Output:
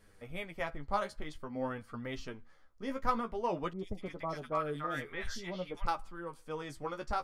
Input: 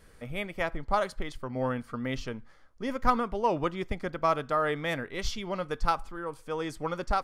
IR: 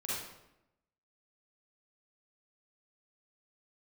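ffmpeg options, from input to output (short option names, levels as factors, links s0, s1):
-filter_complex "[0:a]flanger=delay=9.3:depth=5.8:regen=23:speed=0.51:shape=triangular,asettb=1/sr,asplit=3[s0][s1][s2];[s0]atrim=end=3.734[s3];[s1]atrim=start=3.73:end=5.87,asetpts=PTS-STARTPTS,afade=t=in:d=0.004:c=qsin,afade=t=out:st=2.136:d=0.004:c=qsin,acrossover=split=970|3200[s4][s5][s6];[s6]adelay=60[s7];[s5]adelay=290[s8];[s4][s8][s7]amix=inputs=3:normalize=0,atrim=end_sample=94374[s9];[s2]atrim=start=5.866[s10];[s3][s9]acrossfade=d=0.004:c1=hsin:c2=qsin[s11];[s11][s10]acrossfade=d=0.004:c1=qsin:c2=hsin,volume=0.708"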